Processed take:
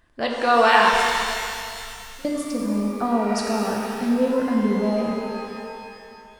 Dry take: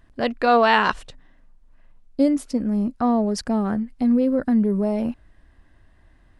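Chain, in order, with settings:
low-shelf EQ 350 Hz −9.5 dB
0:00.89–0:02.25: compressor whose output falls as the input rises −40 dBFS
reverb with rising layers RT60 2.5 s, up +12 semitones, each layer −8 dB, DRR −1 dB

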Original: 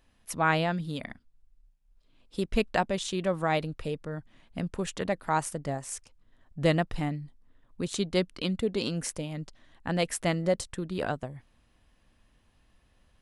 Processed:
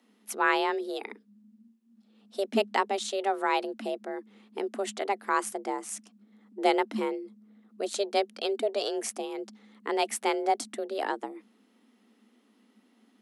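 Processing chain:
frequency shifter +200 Hz

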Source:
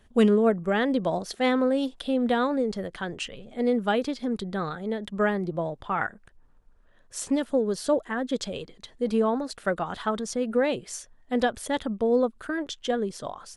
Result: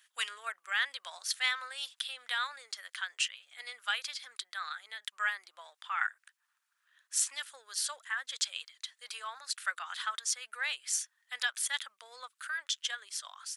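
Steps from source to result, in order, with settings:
high-pass filter 1,400 Hz 24 dB per octave
high-shelf EQ 4,300 Hz +7 dB

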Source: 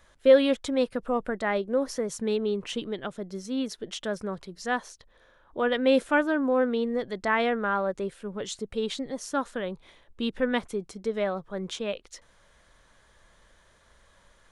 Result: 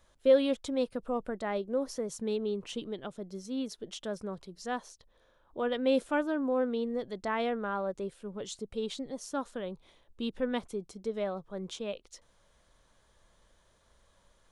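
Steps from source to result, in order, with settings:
parametric band 1,800 Hz −6.5 dB 1 octave
level −5 dB

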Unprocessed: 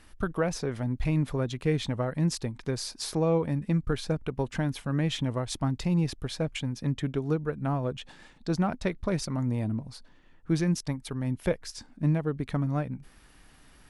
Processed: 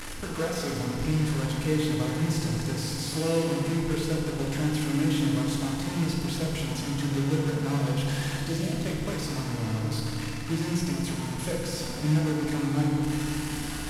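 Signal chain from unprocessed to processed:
linear delta modulator 64 kbit/s, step −25.5 dBFS
time-frequency box erased 0:08.49–0:08.72, 720–1,900 Hz
feedback delay network reverb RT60 2.5 s, low-frequency decay 1.55×, high-frequency decay 0.85×, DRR −3 dB
level −7 dB

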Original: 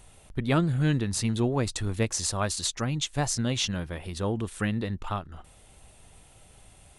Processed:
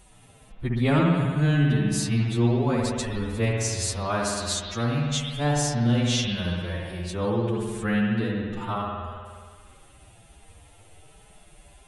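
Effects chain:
spring reverb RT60 1.1 s, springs 34 ms, chirp 70 ms, DRR −1.5 dB
phase-vocoder stretch with locked phases 1.7×

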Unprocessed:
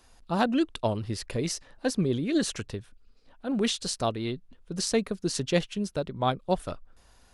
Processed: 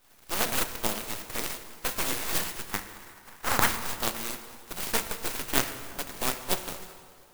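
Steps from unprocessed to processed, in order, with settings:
compressing power law on the bin magnitudes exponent 0.2
0:02.71–0:03.69: flat-topped bell 1,300 Hz +11.5 dB
half-wave rectification
0:05.45: tape stop 0.54 s
dense smooth reverb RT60 2.2 s, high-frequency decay 0.7×, DRR 8 dB
converter with an unsteady clock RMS 0.061 ms
level +1.5 dB

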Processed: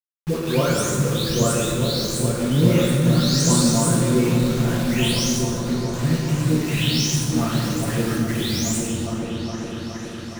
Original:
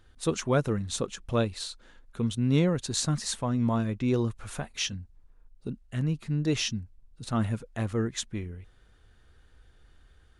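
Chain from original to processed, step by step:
every frequency bin delayed by itself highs late, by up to 559 ms
high-shelf EQ 2,200 Hz +7.5 dB
in parallel at +3 dB: downward compressor 12 to 1, threshold −40 dBFS, peak gain reduction 20.5 dB
on the sum: bit reduction 6 bits
on a send: echo whose low-pass opens from repeat to repeat 414 ms, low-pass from 200 Hz, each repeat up 1 octave, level 0 dB
on the sum: dense smooth reverb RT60 2.1 s, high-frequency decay 0.6×, DRR −3.5 dB

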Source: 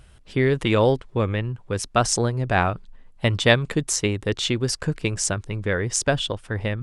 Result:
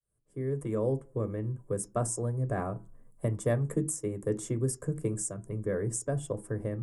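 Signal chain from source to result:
fade in at the beginning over 1.81 s
drawn EQ curve 120 Hz 0 dB, 200 Hz −9 dB, 4,100 Hz −23 dB, 7,400 Hz +10 dB, 11,000 Hz +12 dB
downward compressor 2 to 1, threshold −33 dBFS, peak gain reduction 11.5 dB
convolution reverb RT60 0.40 s, pre-delay 3 ms, DRR 9 dB
level −4.5 dB

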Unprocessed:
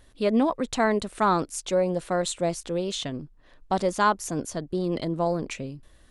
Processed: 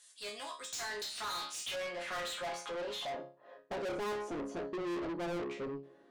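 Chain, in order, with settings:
resonators tuned to a chord C#3 major, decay 0.32 s
band-pass filter sweep 7,700 Hz → 360 Hz, 0:00.59–0:03.96
mid-hump overdrive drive 36 dB, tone 6,900 Hz, clips at −32 dBFS
level +1 dB

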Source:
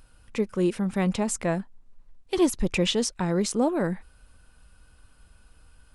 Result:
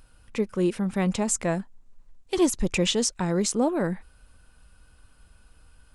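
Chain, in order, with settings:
0:01.09–0:03.51: parametric band 7,100 Hz +6 dB 0.66 octaves

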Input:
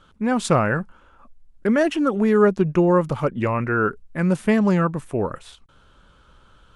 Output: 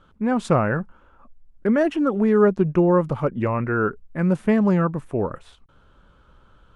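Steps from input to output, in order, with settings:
high-shelf EQ 2,500 Hz −11 dB

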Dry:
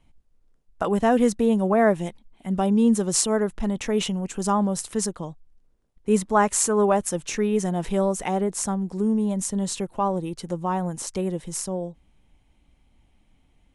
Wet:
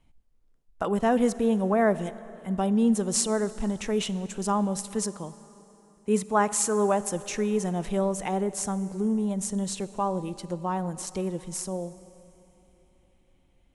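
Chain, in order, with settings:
0:05.03–0:07.02: high-pass filter 89 Hz 6 dB per octave
on a send: convolution reverb RT60 3.6 s, pre-delay 33 ms, DRR 15.5 dB
on the sum: level −3.5 dB

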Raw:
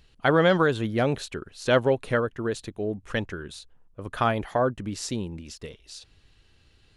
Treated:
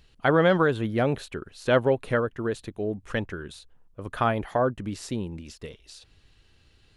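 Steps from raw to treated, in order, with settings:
dynamic equaliser 5,900 Hz, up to −8 dB, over −48 dBFS, Q 0.82

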